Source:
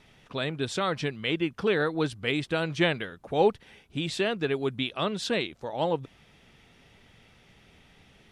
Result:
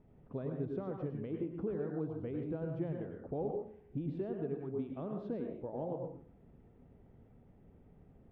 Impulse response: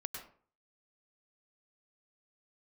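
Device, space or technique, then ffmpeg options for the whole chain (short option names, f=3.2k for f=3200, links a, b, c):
television next door: -filter_complex "[0:a]acompressor=threshold=-32dB:ratio=4,lowpass=510[a];[1:a]atrim=start_sample=2205[b];[a][b]afir=irnorm=-1:irlink=0,volume=1dB"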